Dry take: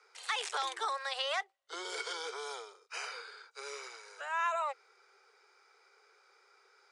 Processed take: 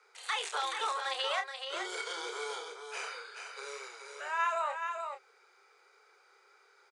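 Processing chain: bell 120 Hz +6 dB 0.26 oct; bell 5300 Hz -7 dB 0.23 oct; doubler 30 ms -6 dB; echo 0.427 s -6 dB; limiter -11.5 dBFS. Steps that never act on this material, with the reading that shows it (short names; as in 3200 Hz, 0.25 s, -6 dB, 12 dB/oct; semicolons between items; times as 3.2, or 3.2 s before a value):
bell 120 Hz: input band starts at 320 Hz; limiter -11.5 dBFS: input peak -19.0 dBFS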